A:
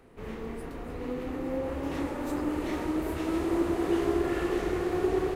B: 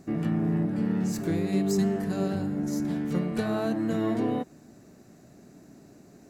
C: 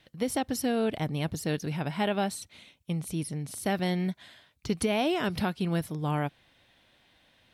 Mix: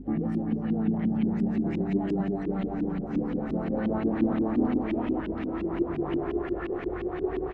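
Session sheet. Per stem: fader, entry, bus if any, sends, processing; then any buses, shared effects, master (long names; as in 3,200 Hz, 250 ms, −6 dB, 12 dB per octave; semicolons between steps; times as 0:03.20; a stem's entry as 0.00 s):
−5.5 dB, 2.20 s, no send, no echo send, no processing
−2.0 dB, 0.00 s, no send, echo send −7 dB, hollow resonant body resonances 250/810 Hz, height 10 dB; automatic ducking −12 dB, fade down 0.65 s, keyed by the third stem
−8.5 dB, 0.00 s, no send, no echo send, brickwall limiter −25 dBFS, peak gain reduction 9 dB; upward compression, threshold −36 dBFS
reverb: not used
echo: repeating echo 390 ms, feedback 57%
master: auto-filter low-pass saw up 5.7 Hz 250–3,000 Hz; mains hum 50 Hz, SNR 18 dB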